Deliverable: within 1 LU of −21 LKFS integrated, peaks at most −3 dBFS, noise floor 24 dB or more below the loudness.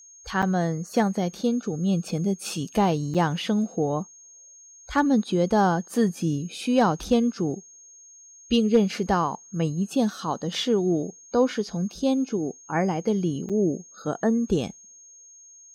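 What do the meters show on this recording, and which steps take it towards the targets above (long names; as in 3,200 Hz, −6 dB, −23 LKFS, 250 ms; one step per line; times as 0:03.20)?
number of dropouts 3; longest dropout 6.7 ms; interfering tone 6,500 Hz; level of the tone −47 dBFS; integrated loudness −25.0 LKFS; sample peak −9.5 dBFS; target loudness −21.0 LKFS
→ repair the gap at 0:00.42/0:03.14/0:13.49, 6.7 ms
notch filter 6,500 Hz, Q 30
level +4 dB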